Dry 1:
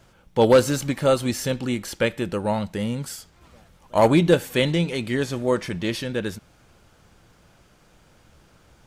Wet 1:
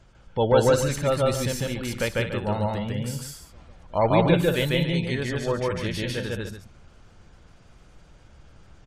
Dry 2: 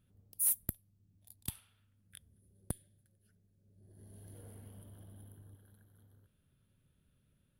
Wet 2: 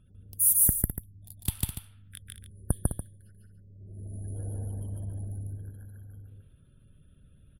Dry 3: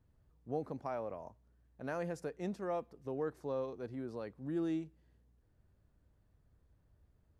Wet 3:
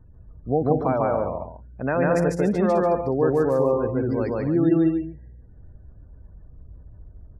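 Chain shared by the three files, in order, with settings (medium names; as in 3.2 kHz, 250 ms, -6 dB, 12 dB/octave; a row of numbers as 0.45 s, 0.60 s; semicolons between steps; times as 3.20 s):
dynamic bell 280 Hz, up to -6 dB, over -35 dBFS, Q 1.2; spectral gate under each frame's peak -30 dB strong; bass shelf 74 Hz +12 dB; on a send: loudspeakers at several distances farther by 51 m 0 dB, 71 m -9 dB, 99 m -10 dB; on the sum: peak normalisation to -6 dBFS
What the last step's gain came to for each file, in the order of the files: -4.0 dB, +8.0 dB, +15.0 dB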